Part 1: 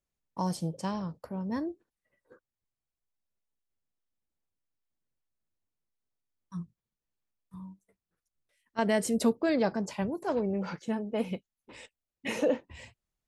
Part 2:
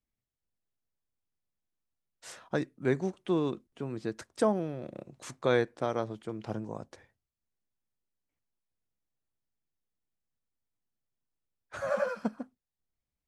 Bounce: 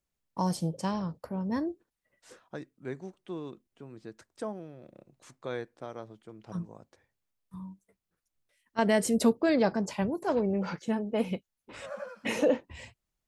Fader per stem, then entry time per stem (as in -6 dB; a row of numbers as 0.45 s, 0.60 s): +2.0 dB, -10.0 dB; 0.00 s, 0.00 s